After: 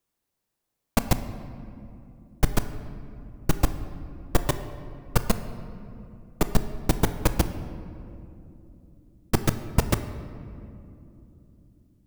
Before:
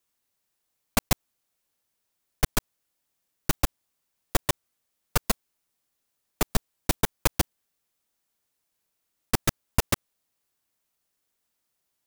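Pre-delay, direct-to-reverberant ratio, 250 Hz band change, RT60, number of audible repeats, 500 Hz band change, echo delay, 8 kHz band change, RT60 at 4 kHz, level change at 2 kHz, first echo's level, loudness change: 6 ms, 9.0 dB, +5.0 dB, 2.9 s, no echo audible, +3.0 dB, no echo audible, −4.0 dB, 1.4 s, −2.0 dB, no echo audible, 0.0 dB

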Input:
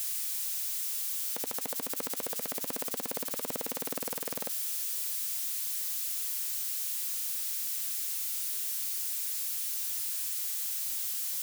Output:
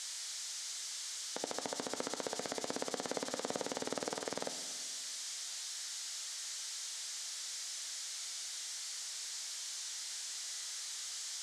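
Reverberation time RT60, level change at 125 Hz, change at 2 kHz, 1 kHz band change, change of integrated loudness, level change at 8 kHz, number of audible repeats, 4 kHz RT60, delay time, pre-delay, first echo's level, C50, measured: 1.7 s, can't be measured, −0.5 dB, +1.0 dB, −8.5 dB, −4.5 dB, no echo audible, 1.5 s, no echo audible, 10 ms, no echo audible, 10.0 dB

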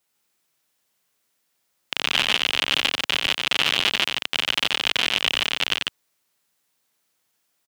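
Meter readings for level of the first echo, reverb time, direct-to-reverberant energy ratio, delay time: −5.0 dB, no reverb audible, no reverb audible, 90 ms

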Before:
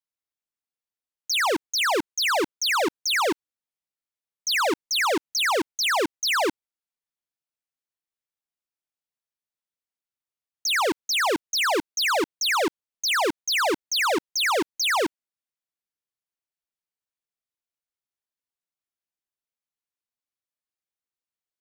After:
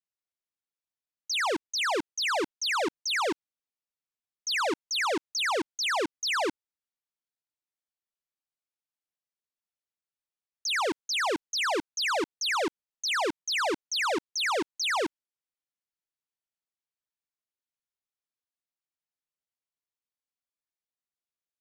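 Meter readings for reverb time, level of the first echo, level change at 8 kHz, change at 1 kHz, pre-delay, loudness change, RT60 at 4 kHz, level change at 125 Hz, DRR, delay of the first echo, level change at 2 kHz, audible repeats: no reverb audible, no echo audible, −6.0 dB, −5.0 dB, no reverb audible, −5.0 dB, no reverb audible, −5.0 dB, no reverb audible, no echo audible, −5.0 dB, no echo audible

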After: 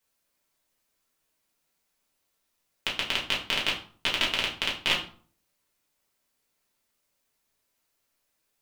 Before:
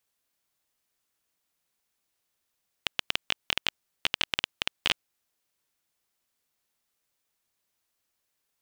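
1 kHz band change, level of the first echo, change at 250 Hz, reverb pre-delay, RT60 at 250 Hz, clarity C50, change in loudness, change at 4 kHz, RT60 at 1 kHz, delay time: +4.5 dB, no echo audible, +6.0 dB, 4 ms, 0.55 s, 8.0 dB, +3.0 dB, +3.0 dB, 0.45 s, no echo audible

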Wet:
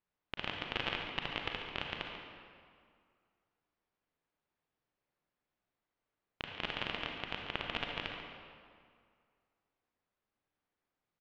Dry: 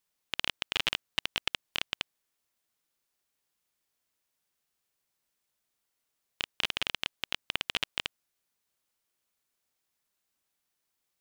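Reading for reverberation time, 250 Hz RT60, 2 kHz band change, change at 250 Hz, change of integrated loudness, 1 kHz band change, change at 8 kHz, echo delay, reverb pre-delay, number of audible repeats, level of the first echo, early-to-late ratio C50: 2.1 s, 2.2 s, −4.0 dB, +3.0 dB, −6.0 dB, +0.5 dB, below −20 dB, 141 ms, 35 ms, 1, −10.0 dB, 1.5 dB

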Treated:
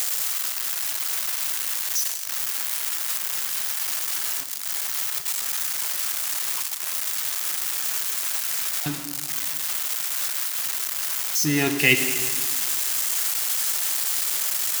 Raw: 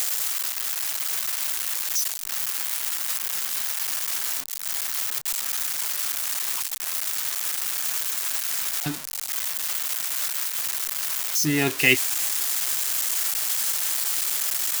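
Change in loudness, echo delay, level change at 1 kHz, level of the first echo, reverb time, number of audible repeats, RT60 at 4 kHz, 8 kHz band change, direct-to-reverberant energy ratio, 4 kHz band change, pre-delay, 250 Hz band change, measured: +0.5 dB, no echo audible, +0.5 dB, no echo audible, 1.8 s, no echo audible, 1.6 s, +0.5 dB, 7.5 dB, +0.5 dB, 34 ms, +1.5 dB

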